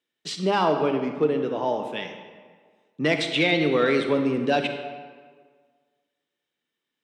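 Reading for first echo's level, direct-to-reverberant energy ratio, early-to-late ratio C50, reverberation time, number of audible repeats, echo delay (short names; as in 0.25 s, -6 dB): none, 5.5 dB, 6.5 dB, 1.7 s, none, none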